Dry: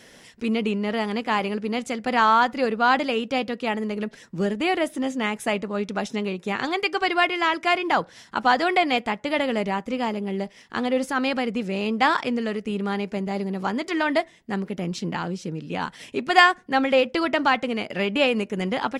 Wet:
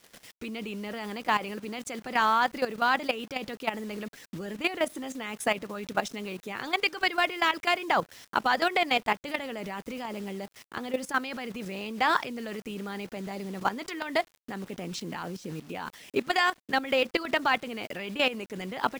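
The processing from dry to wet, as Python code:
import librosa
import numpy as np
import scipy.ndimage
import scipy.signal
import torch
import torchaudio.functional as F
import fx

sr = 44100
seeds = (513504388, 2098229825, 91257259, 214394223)

y = fx.hpss(x, sr, part='harmonic', gain_db=-7)
y = fx.quant_dither(y, sr, seeds[0], bits=8, dither='none')
y = fx.level_steps(y, sr, step_db=13)
y = F.gain(torch.from_numpy(y), 3.0).numpy()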